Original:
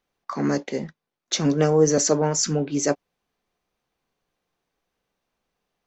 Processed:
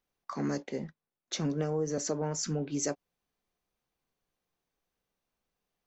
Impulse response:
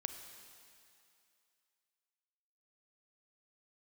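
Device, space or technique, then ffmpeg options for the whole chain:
ASMR close-microphone chain: -filter_complex "[0:a]asettb=1/sr,asplit=3[link_01][link_02][link_03];[link_01]atrim=end=0.624[link_04];[link_02]atrim=start=0.62:end=2.63,asetpts=PTS-STARTPTS,afade=type=in:duration=0.004:curve=qsin,afade=type=out:start_time=2.006:duration=0.004:curve=qsin,highshelf=frequency=4100:gain=-9[link_05];[link_03]atrim=start=2.626[link_06];[link_04][link_05]acrossfade=duration=0.004:curve1=hsin:curve2=qsin[link_07];[link_07][link_06]acrossfade=duration=0.004:curve1=qsin:curve2=hsin,lowshelf=frequency=160:gain=4.5,acompressor=threshold=-19dB:ratio=6,highshelf=frequency=7100:gain=7.5,volume=-8.5dB"

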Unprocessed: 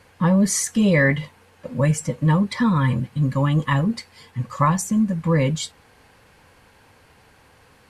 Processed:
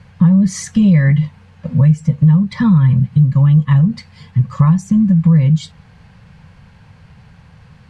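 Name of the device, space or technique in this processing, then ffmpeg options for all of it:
jukebox: -af "lowpass=5700,lowshelf=frequency=230:width_type=q:width=3:gain=10.5,acompressor=threshold=-12dB:ratio=4,volume=2.5dB"

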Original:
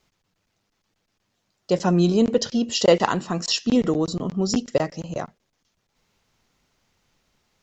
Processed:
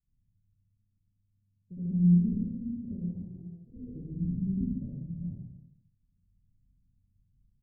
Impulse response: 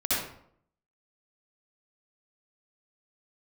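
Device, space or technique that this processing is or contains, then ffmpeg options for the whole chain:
club heard from the street: -filter_complex "[0:a]asettb=1/sr,asplit=3[link_01][link_02][link_03];[link_01]atrim=end=3.154[link_04];[link_02]atrim=start=3.15:end=3.96,asetpts=PTS-STARTPTS,afade=type=in:duration=0.004:curve=qsin,afade=type=out:start_time=0.806:duration=0.004:curve=qsin,lowshelf=frequency=310:width_type=q:width=3:gain=-9.5[link_05];[link_03]atrim=start=3.956[link_06];[link_04][link_05]acrossfade=duration=0.004:curve1=hsin:curve2=qsin[link_07];[link_07][link_06]acrossfade=duration=0.004:curve1=qsin:curve2=hsin,alimiter=limit=-10.5dB:level=0:latency=1:release=425,lowpass=frequency=160:width=0.5412,lowpass=frequency=160:width=1.3066[link_08];[1:a]atrim=start_sample=2205[link_09];[link_08][link_09]afir=irnorm=-1:irlink=0,aecho=1:1:69|111|140|308:0.562|0.316|0.376|0.168,volume=-9dB"

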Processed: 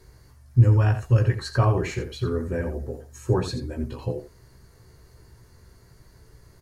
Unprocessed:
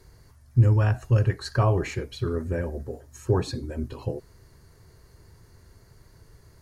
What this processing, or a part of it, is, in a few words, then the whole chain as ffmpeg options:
slapback doubling: -filter_complex "[0:a]asplit=3[link_01][link_02][link_03];[link_02]adelay=16,volume=-6dB[link_04];[link_03]adelay=85,volume=-10dB[link_05];[link_01][link_04][link_05]amix=inputs=3:normalize=0"

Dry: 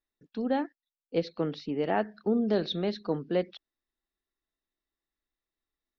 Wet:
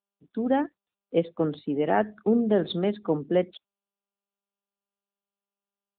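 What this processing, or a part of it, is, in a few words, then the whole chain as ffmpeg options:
mobile call with aggressive noise cancelling: -af "highpass=110,afftdn=noise_reduction=19:noise_floor=-50,volume=5dB" -ar 8000 -c:a libopencore_amrnb -b:a 10200

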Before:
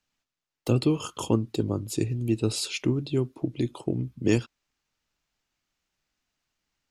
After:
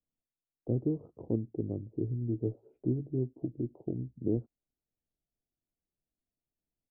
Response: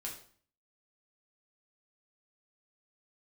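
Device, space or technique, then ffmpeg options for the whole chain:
under water: -filter_complex "[0:a]lowpass=frequency=500:width=0.5412,lowpass=frequency=500:width=1.3066,equalizer=frequency=710:width_type=o:width=0.43:gain=8.5,asplit=3[link_01][link_02][link_03];[link_01]afade=type=out:start_time=1.88:duration=0.02[link_04];[link_02]asplit=2[link_05][link_06];[link_06]adelay=16,volume=-7dB[link_07];[link_05][link_07]amix=inputs=2:normalize=0,afade=type=in:start_time=1.88:duration=0.02,afade=type=out:start_time=3.46:duration=0.02[link_08];[link_03]afade=type=in:start_time=3.46:duration=0.02[link_09];[link_04][link_08][link_09]amix=inputs=3:normalize=0,volume=-7.5dB"

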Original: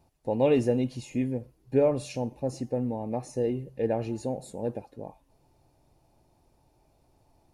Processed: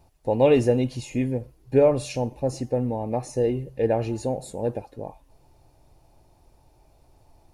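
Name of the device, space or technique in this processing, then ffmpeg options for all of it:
low shelf boost with a cut just above: -af "lowshelf=frequency=62:gain=7,equalizer=frequency=210:width_type=o:width=1.2:gain=-4.5,volume=6dB"

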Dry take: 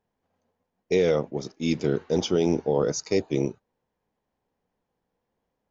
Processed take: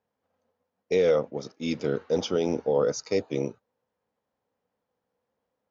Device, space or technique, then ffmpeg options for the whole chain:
car door speaker: -af "highpass=88,equalizer=frequency=160:width_type=q:width=4:gain=-5,equalizer=frequency=360:width_type=q:width=4:gain=-5,equalizer=frequency=510:width_type=q:width=4:gain=6,equalizer=frequency=1300:width_type=q:width=4:gain=5,lowpass=frequency=6600:width=0.5412,lowpass=frequency=6600:width=1.3066,volume=-2.5dB"

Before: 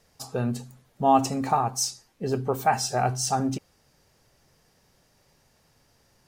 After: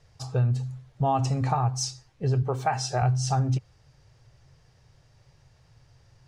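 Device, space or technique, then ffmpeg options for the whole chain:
jukebox: -filter_complex "[0:a]asettb=1/sr,asplit=3[link_01][link_02][link_03];[link_01]atrim=end=2.424[link_04];[link_02]atrim=start=2.42:end=3.02,asetpts=PTS-STARTPTS,afade=type=in:duration=0.004:curve=qsin,afade=type=out:start_time=0.596:duration=0.004:curve=qsin,highpass=180[link_05];[link_03]atrim=start=3.016[link_06];[link_04][link_05]acrossfade=duration=0.004:curve1=hsin:curve2=qsin[link_07];[link_07][link_06]acrossfade=duration=0.004:curve1=qsin:curve2=hsin,lowpass=6200,lowshelf=frequency=160:width_type=q:width=3:gain=8,acompressor=threshold=-21dB:ratio=4"

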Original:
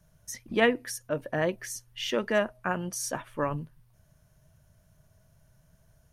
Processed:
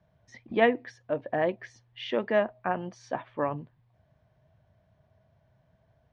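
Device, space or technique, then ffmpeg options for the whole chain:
guitar cabinet: -af "highpass=86,equalizer=frequency=160:width_type=q:width=4:gain=-6,equalizer=frequency=740:width_type=q:width=4:gain=6,equalizer=frequency=1400:width_type=q:width=4:gain=-6,equalizer=frequency=2800:width_type=q:width=4:gain=-5,lowpass=frequency=3500:width=0.5412,lowpass=frequency=3500:width=1.3066"

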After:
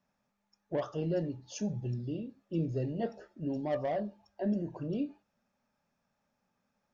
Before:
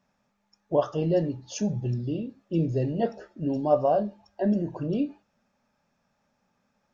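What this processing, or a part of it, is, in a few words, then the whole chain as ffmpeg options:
one-band saturation: -filter_complex "[0:a]acrossover=split=450|2600[link_01][link_02][link_03];[link_02]asoftclip=type=tanh:threshold=-25dB[link_04];[link_01][link_04][link_03]amix=inputs=3:normalize=0,volume=-7dB"

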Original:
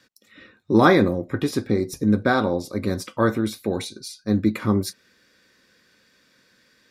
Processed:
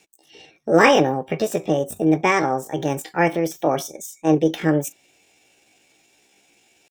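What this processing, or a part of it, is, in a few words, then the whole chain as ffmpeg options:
chipmunk voice: -filter_complex "[0:a]asetrate=66075,aresample=44100,atempo=0.66742,asettb=1/sr,asplit=3[link_01][link_02][link_03];[link_01]atrim=end=3.604[link_04];[link_02]atrim=start=3.6:end=4.35,asetpts=PTS-STARTPTS,afade=type=in:duration=0.004:curve=qsin,afade=type=out:start_time=0.746:duration=0.004:curve=qsin,equalizer=frequency=790:width_type=o:width=2.7:gain=4.5[link_05];[link_03]atrim=start=4.346[link_06];[link_04][link_05]acrossfade=duration=0.004:curve1=hsin:curve2=qsin[link_07];[link_07][link_06]acrossfade=duration=0.004:curve1=qsin:curve2=hsin,volume=1.5dB"

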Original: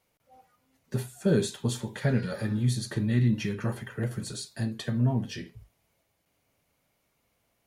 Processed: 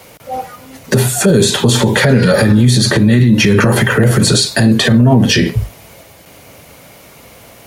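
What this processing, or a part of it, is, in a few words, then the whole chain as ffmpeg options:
mastering chain: -filter_complex "[0:a]highpass=51,equalizer=frequency=520:width_type=o:width=0.56:gain=3,acrossover=split=160|4900[link_01][link_02][link_03];[link_01]acompressor=threshold=-37dB:ratio=4[link_04];[link_02]acompressor=threshold=-31dB:ratio=4[link_05];[link_03]acompressor=threshold=-46dB:ratio=4[link_06];[link_04][link_05][link_06]amix=inputs=3:normalize=0,acompressor=threshold=-37dB:ratio=2,alimiter=level_in=35dB:limit=-1dB:release=50:level=0:latency=1,volume=-1dB"

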